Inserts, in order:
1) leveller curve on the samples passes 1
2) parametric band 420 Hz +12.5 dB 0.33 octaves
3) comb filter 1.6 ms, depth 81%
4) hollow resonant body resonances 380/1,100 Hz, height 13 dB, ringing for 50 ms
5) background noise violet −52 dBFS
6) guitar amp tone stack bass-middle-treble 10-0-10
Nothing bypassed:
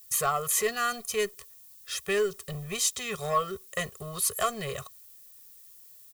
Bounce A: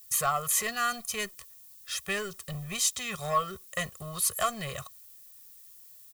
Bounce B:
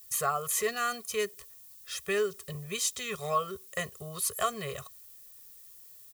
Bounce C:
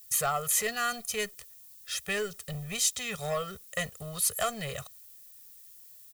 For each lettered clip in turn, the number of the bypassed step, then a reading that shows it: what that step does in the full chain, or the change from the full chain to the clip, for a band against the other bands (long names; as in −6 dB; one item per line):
2, 500 Hz band −6.5 dB
1, change in momentary loudness spread −3 LU
4, 500 Hz band −4.5 dB